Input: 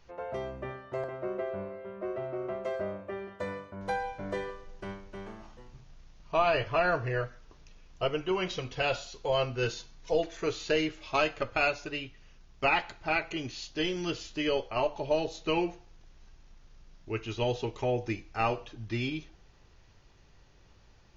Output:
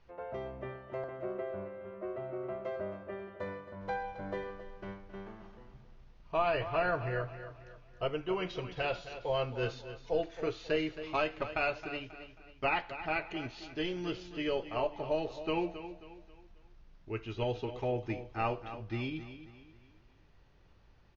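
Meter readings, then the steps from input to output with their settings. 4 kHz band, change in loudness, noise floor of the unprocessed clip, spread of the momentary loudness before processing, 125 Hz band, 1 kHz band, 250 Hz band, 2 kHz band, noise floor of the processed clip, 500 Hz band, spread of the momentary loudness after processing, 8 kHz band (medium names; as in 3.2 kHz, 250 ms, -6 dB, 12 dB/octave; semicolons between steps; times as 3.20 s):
-7.0 dB, -4.5 dB, -58 dBFS, 12 LU, -3.5 dB, -4.0 dB, -3.5 dB, -5.0 dB, -61 dBFS, -3.5 dB, 15 LU, no reading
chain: distance through air 170 m; feedback delay 269 ms, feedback 39%, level -12 dB; trim -3.5 dB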